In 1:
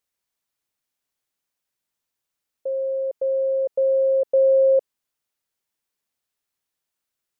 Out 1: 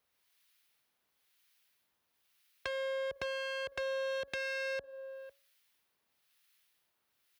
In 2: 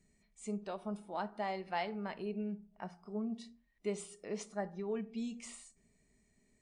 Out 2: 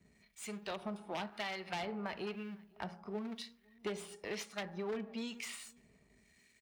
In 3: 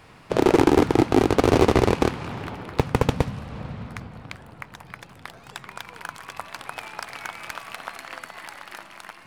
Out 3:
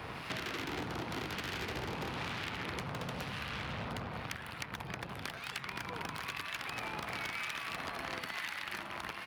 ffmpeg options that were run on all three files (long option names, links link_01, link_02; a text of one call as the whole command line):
ffmpeg -i in.wav -filter_complex "[0:a]aeval=exprs='if(lt(val(0),0),0.447*val(0),val(0))':channel_layout=same,highshelf=frequency=5700:gain=-10.5,aeval=exprs='(tanh(12.6*val(0)+0.05)-tanh(0.05))/12.6':channel_layout=same,asplit=2[link_01][link_02];[link_02]adelay=501.5,volume=-30dB,highshelf=frequency=4000:gain=-11.3[link_03];[link_01][link_03]amix=inputs=2:normalize=0,aexciter=amount=5.1:drive=2.5:freq=10000,acompressor=threshold=-32dB:ratio=16,aeval=exprs='0.0211*(abs(mod(val(0)/0.0211+3,4)-2)-1)':channel_layout=same,highpass=frequency=44:width=0.5412,highpass=frequency=44:width=1.3066,bandreject=frequency=277.1:width_type=h:width=4,bandreject=frequency=554.2:width_type=h:width=4,bandreject=frequency=831.3:width_type=h:width=4,bandreject=frequency=1108.4:width_type=h:width=4,bandreject=frequency=1385.5:width_type=h:width=4,bandreject=frequency=1662.6:width_type=h:width=4,acrossover=split=1300[link_04][link_05];[link_04]aeval=exprs='val(0)*(1-0.7/2+0.7/2*cos(2*PI*1*n/s))':channel_layout=same[link_06];[link_05]aeval=exprs='val(0)*(1-0.7/2-0.7/2*cos(2*PI*1*n/s))':channel_layout=same[link_07];[link_06][link_07]amix=inputs=2:normalize=0,equalizer=frequency=3400:width_type=o:width=2.8:gain=10.5,acrossover=split=400|2100[link_08][link_09][link_10];[link_08]acompressor=threshold=-51dB:ratio=4[link_11];[link_09]acompressor=threshold=-50dB:ratio=4[link_12];[link_10]acompressor=threshold=-53dB:ratio=4[link_13];[link_11][link_12][link_13]amix=inputs=3:normalize=0,volume=8.5dB" out.wav